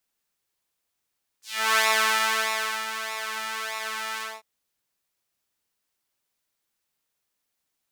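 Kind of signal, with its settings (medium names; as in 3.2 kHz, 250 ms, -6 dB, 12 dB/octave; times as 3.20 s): synth patch with pulse-width modulation A3, filter highpass, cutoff 870 Hz, Q 1.4, filter envelope 3 oct, filter decay 0.18 s, filter sustain 20%, attack 357 ms, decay 1.09 s, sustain -11.5 dB, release 0.22 s, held 2.78 s, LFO 1.6 Hz, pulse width 28%, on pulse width 14%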